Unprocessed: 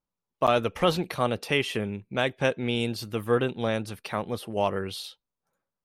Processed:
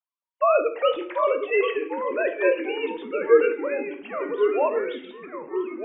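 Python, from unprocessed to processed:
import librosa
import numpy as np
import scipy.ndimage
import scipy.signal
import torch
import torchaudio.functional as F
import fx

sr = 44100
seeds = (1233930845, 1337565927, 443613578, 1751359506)

y = fx.sine_speech(x, sr)
y = fx.room_shoebox(y, sr, seeds[0], volume_m3=74.0, walls='mixed', distance_m=0.35)
y = fx.echo_pitch(y, sr, ms=687, semitones=-2, count=3, db_per_echo=-6.0)
y = y * librosa.db_to_amplitude(1.5)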